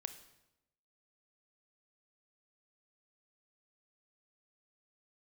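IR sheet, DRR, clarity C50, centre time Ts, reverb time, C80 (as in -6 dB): 9.5 dB, 11.5 dB, 10 ms, 0.90 s, 14.0 dB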